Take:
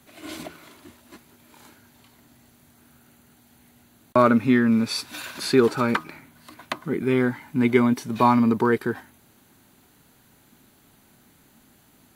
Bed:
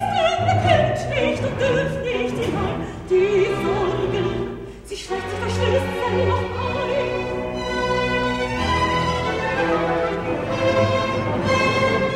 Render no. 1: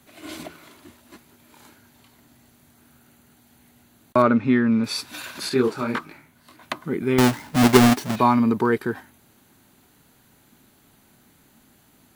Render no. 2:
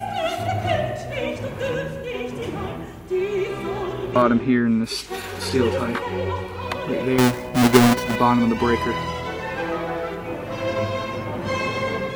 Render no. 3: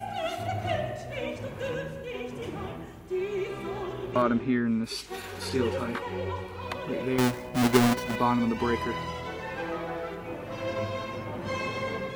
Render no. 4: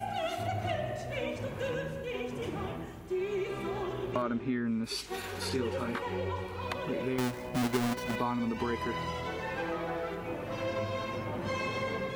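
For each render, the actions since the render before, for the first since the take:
4.22–4.84 s: distance through air 140 m; 5.49–6.63 s: detune thickener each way 59 cents; 7.18–8.16 s: square wave that keeps the level
add bed -6 dB
trim -7.5 dB
compression 3:1, threshold -30 dBFS, peak gain reduction 11 dB

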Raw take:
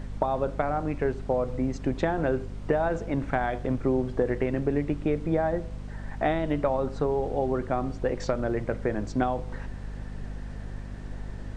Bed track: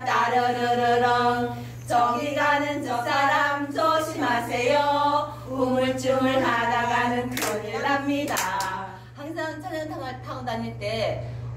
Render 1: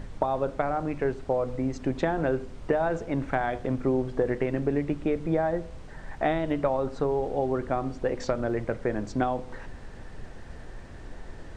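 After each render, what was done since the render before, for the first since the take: de-hum 50 Hz, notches 5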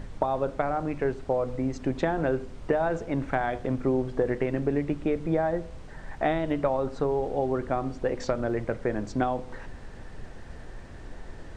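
no audible change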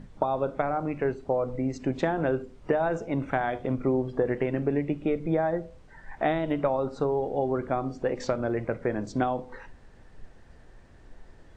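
noise print and reduce 10 dB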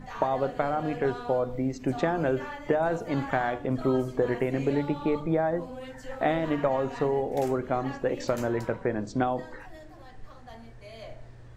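add bed track -18 dB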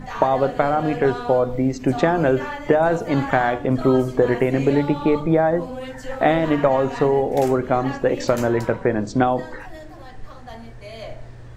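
trim +8.5 dB

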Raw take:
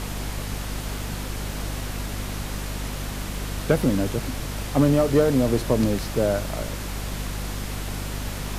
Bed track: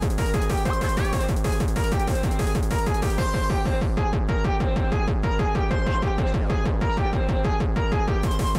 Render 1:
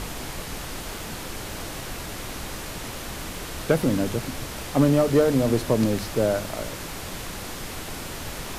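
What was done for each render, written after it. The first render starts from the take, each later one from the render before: de-hum 50 Hz, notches 5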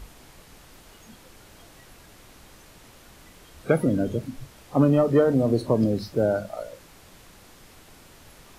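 noise print and reduce 16 dB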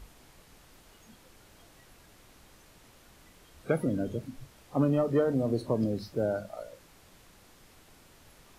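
trim -7 dB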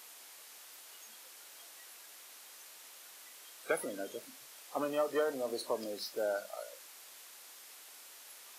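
high-pass 450 Hz 12 dB/octave; tilt EQ +3 dB/octave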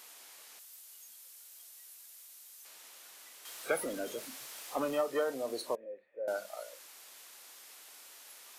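0.59–2.65 s: pre-emphasis filter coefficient 0.8; 3.45–5.01 s: companding laws mixed up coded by mu; 5.75–6.28 s: cascade formant filter e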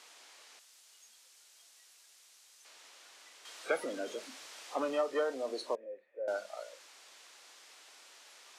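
high-pass 99 Hz; three-band isolator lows -23 dB, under 200 Hz, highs -23 dB, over 8 kHz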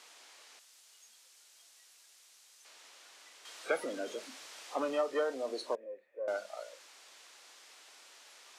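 5.72–6.37 s: self-modulated delay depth 0.061 ms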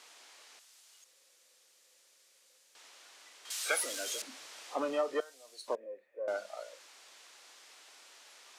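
1.04–2.75 s: room tone; 3.50–4.22 s: tilt EQ +5.5 dB/octave; 5.20–5.68 s: differentiator

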